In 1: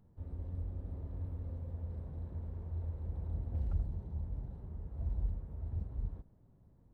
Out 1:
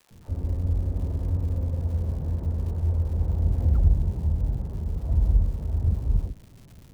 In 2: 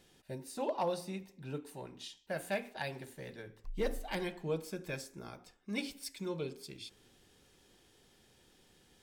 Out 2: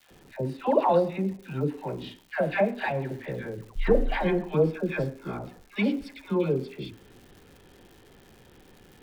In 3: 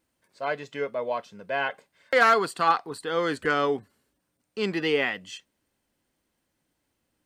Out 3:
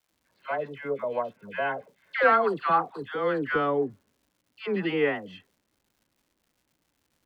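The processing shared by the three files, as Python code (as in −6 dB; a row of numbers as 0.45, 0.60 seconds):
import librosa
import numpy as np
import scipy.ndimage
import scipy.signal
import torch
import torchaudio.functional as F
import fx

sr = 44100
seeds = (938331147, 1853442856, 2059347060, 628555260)

y = fx.air_absorb(x, sr, metres=450.0)
y = fx.dispersion(y, sr, late='lows', ms=112.0, hz=960.0)
y = fx.dmg_crackle(y, sr, seeds[0], per_s=260.0, level_db=-58.0)
y = y * 10.0 ** (-9 / 20.0) / np.max(np.abs(y))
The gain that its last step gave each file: +15.0, +14.0, +1.0 decibels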